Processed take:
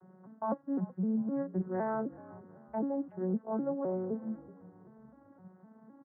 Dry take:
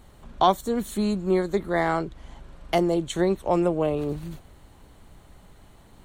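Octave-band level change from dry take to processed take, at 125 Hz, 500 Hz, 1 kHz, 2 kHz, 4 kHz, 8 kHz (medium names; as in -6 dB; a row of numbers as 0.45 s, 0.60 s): -9.5 dB, -11.5 dB, -14.5 dB, -18.0 dB, under -40 dB, under -35 dB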